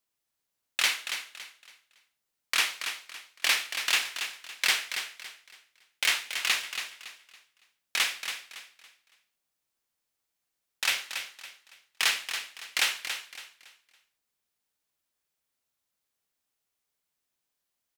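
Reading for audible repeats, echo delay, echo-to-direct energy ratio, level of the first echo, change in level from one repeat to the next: 3, 280 ms, -8.0 dB, -8.5 dB, -10.0 dB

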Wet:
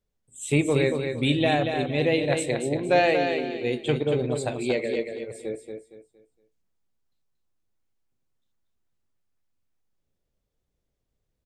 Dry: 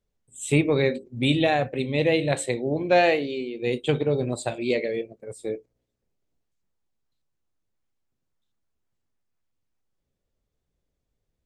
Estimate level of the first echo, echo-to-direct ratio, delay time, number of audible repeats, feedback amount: -6.0 dB, -5.5 dB, 232 ms, 3, 31%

